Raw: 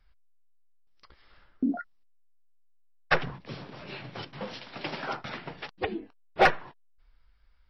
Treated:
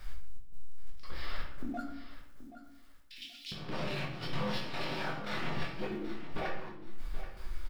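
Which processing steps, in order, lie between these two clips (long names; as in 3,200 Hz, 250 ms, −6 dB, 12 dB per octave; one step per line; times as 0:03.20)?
mu-law and A-law mismatch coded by mu
0:01.80–0:03.52: Butterworth high-pass 2,900 Hz 36 dB per octave
downward compressor 5 to 1, threshold −46 dBFS, peak gain reduction 26 dB
brickwall limiter −42 dBFS, peak gain reduction 10.5 dB
square-wave tremolo 1.9 Hz, depth 65%, duty 70%
0:04.19–0:05.88: double-tracking delay 24 ms −4 dB
repeating echo 778 ms, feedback 25%, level −13 dB
rectangular room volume 130 cubic metres, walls mixed, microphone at 1 metre
level +8.5 dB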